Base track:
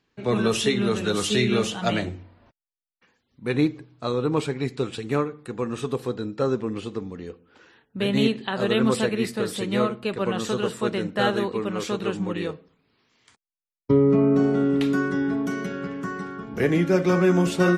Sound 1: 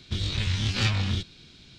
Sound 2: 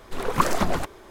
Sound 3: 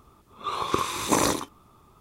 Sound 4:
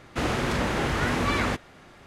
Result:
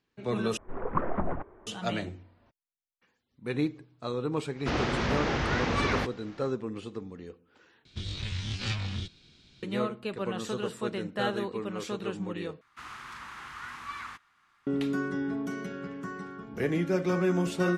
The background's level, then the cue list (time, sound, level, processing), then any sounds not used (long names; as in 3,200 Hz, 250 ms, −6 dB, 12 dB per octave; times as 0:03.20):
base track −7.5 dB
0:00.57: overwrite with 2 −6 dB + Bessel low-pass filter 1,200 Hz, order 6
0:04.50: mix in 4 −2.5 dB, fades 0.10 s + variable-slope delta modulation 32 kbit/s
0:07.85: overwrite with 1 −7.5 dB + downsampling to 22,050 Hz
0:12.61: overwrite with 4 −16.5 dB + low shelf with overshoot 800 Hz −12 dB, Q 3
not used: 3